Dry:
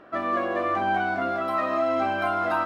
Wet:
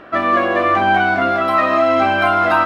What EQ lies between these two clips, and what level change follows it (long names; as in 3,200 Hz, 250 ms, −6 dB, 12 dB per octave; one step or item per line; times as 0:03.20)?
low-shelf EQ 110 Hz +6 dB
parametric band 2,600 Hz +5.5 dB 1.9 octaves
+8.5 dB